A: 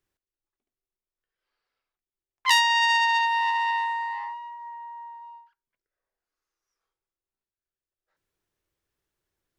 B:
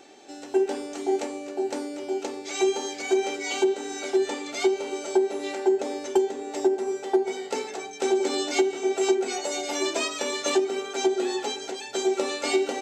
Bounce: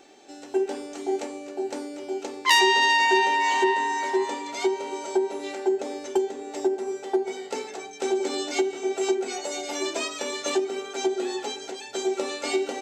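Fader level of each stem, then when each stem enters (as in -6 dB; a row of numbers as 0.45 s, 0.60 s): +1.0 dB, -2.0 dB; 0.00 s, 0.00 s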